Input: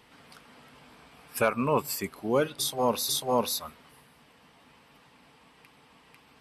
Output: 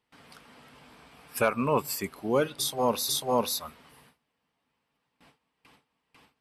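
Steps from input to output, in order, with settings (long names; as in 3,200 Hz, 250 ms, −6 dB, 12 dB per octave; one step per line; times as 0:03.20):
noise gate with hold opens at −46 dBFS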